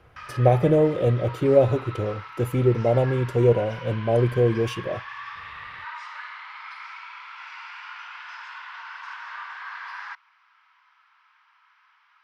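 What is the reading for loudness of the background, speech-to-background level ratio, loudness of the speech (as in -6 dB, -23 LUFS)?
-38.0 LUFS, 16.0 dB, -22.0 LUFS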